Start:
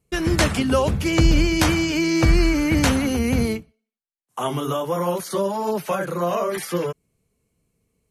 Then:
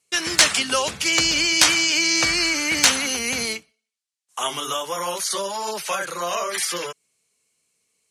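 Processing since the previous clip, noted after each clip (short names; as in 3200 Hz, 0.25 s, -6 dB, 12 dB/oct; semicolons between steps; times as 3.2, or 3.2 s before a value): weighting filter ITU-R 468; in parallel at -9 dB: wrapped overs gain 1.5 dB; on the sum: gain -3 dB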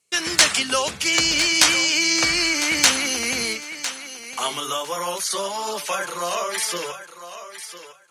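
notches 50/100/150 Hz; thinning echo 1.004 s, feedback 16%, high-pass 320 Hz, level -11.5 dB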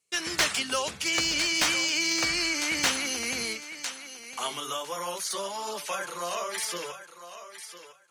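slew limiter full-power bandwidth 880 Hz; gain -7 dB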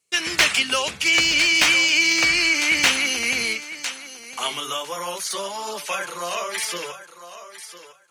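dynamic EQ 2500 Hz, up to +8 dB, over -43 dBFS, Q 1.7; gain +4 dB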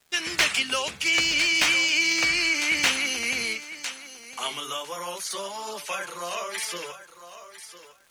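crackle 530/s -44 dBFS; gain -4.5 dB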